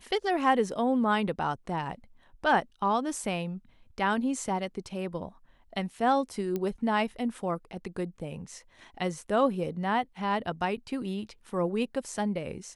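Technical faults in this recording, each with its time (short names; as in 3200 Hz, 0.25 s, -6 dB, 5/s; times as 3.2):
6.56 pop -19 dBFS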